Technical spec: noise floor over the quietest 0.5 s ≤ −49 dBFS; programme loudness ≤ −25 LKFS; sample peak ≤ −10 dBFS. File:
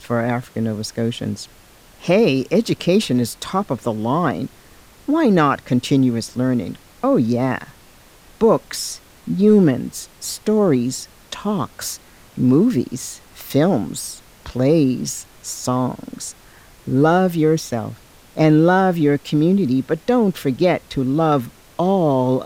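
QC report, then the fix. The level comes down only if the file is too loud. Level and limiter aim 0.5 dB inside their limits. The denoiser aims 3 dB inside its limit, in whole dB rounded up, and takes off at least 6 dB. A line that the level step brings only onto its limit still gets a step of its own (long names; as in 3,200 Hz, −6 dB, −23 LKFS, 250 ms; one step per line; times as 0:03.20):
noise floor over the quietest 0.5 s −47 dBFS: out of spec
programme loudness −18.5 LKFS: out of spec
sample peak −4.5 dBFS: out of spec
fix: level −7 dB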